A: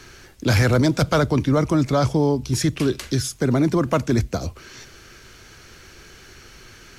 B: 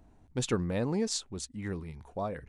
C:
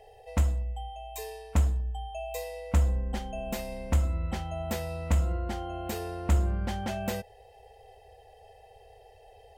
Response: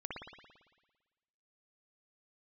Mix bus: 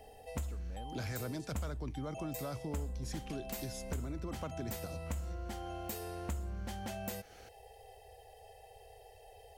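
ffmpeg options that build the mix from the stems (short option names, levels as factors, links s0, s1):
-filter_complex "[0:a]adelay=500,volume=0.211[s0];[1:a]acompressor=threshold=0.00501:ratio=2,volume=0.562[s1];[2:a]highshelf=f=6600:g=12,volume=0.75[s2];[s0][s1][s2]amix=inputs=3:normalize=0,acompressor=threshold=0.01:ratio=3"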